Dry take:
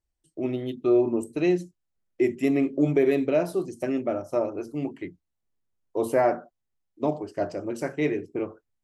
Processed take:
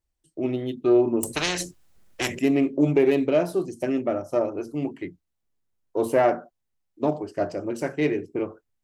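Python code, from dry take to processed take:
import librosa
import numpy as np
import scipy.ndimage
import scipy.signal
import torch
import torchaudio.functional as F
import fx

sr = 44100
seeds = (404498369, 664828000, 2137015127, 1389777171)

y = fx.self_delay(x, sr, depth_ms=0.067)
y = fx.spectral_comp(y, sr, ratio=4.0, at=(1.23, 2.39))
y = y * librosa.db_to_amplitude(2.0)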